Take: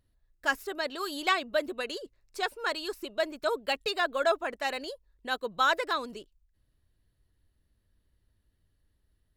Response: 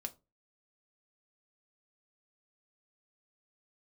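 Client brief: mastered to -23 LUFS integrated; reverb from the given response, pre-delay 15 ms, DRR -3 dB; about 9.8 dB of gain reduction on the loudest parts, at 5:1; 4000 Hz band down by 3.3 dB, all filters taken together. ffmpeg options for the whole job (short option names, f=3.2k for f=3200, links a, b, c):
-filter_complex "[0:a]equalizer=f=4k:t=o:g=-4,acompressor=threshold=-32dB:ratio=5,asplit=2[a][b];[1:a]atrim=start_sample=2205,adelay=15[c];[b][c]afir=irnorm=-1:irlink=0,volume=5.5dB[d];[a][d]amix=inputs=2:normalize=0,volume=10dB"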